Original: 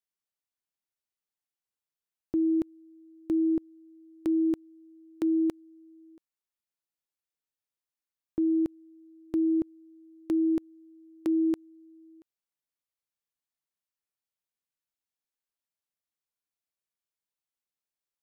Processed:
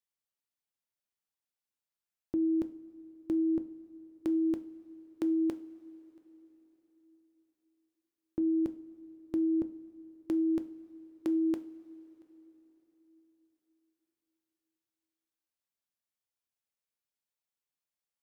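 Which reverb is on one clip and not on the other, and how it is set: two-slope reverb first 0.36 s, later 4.3 s, from -18 dB, DRR 9.5 dB; gain -2.5 dB

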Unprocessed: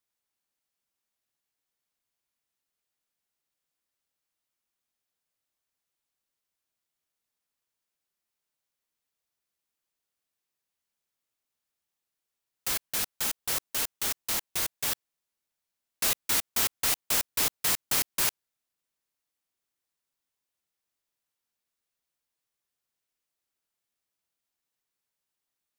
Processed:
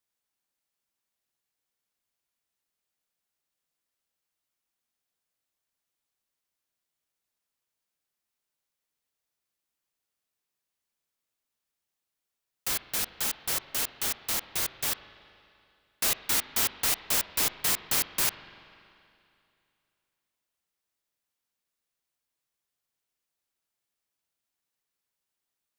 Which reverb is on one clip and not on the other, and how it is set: spring tank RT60 2.6 s, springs 39/47 ms, chirp 20 ms, DRR 12.5 dB

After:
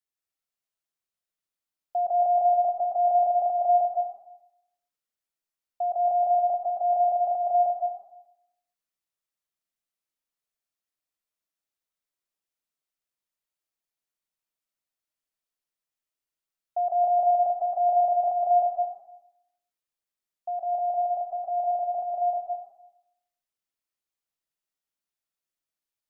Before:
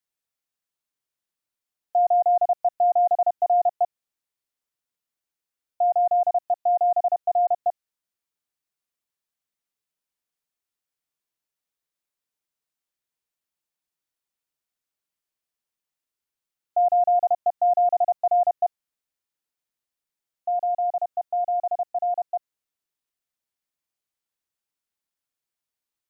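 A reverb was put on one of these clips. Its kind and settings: digital reverb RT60 0.82 s, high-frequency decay 0.95×, pre-delay 0.105 s, DRR -0.5 dB; gain -6.5 dB

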